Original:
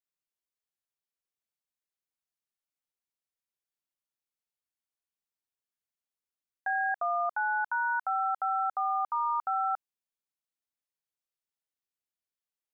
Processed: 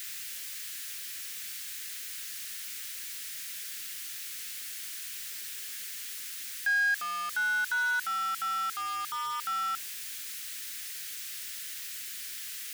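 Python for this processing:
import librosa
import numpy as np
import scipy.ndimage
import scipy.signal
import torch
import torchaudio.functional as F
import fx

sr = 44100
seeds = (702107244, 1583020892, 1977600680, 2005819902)

y = x + 0.5 * 10.0 ** (-38.5 / 20.0) * np.sign(x)
y = fx.curve_eq(y, sr, hz=(460.0, 700.0, 1700.0), db=(0, -17, 14))
y = 10.0 ** (-15.5 / 20.0) * np.tanh(y / 10.0 ** (-15.5 / 20.0))
y = F.gain(torch.from_numpy(y), -5.5).numpy()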